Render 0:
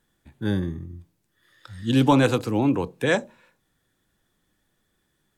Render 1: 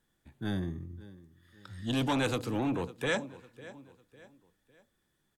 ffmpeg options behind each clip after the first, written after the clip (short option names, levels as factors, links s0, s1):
-filter_complex "[0:a]aecho=1:1:552|1104|1656:0.0891|0.0357|0.0143,acrossover=split=1600[s0][s1];[s0]asoftclip=type=tanh:threshold=0.0891[s2];[s2][s1]amix=inputs=2:normalize=0,volume=0.531"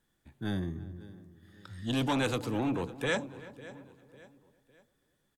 -filter_complex "[0:a]asplit=2[s0][s1];[s1]adelay=334,lowpass=f=1500:p=1,volume=0.141,asplit=2[s2][s3];[s3]adelay=334,lowpass=f=1500:p=1,volume=0.48,asplit=2[s4][s5];[s5]adelay=334,lowpass=f=1500:p=1,volume=0.48,asplit=2[s6][s7];[s7]adelay=334,lowpass=f=1500:p=1,volume=0.48[s8];[s0][s2][s4][s6][s8]amix=inputs=5:normalize=0"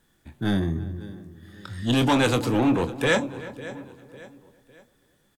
-filter_complex "[0:a]asplit=2[s0][s1];[s1]asoftclip=type=hard:threshold=0.02,volume=0.355[s2];[s0][s2]amix=inputs=2:normalize=0,asplit=2[s3][s4];[s4]adelay=25,volume=0.299[s5];[s3][s5]amix=inputs=2:normalize=0,volume=2.37"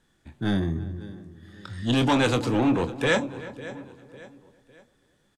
-af "lowpass=8600,volume=0.891"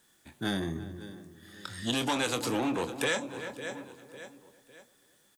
-af "aemphasis=mode=production:type=bsi,acompressor=threshold=0.0447:ratio=4"